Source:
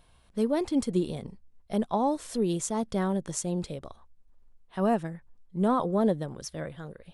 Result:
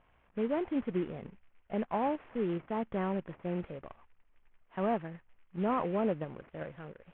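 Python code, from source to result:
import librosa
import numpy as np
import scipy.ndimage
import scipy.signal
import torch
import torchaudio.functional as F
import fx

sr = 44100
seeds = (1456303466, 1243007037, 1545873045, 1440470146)

p1 = fx.cvsd(x, sr, bps=16000)
p2 = fx.low_shelf(p1, sr, hz=270.0, db=-7.5)
p3 = fx.level_steps(p2, sr, step_db=12)
p4 = p2 + (p3 * 10.0 ** (0.5 / 20.0))
p5 = fx.air_absorb(p4, sr, metres=360.0)
y = p5 * 10.0 ** (-4.5 / 20.0)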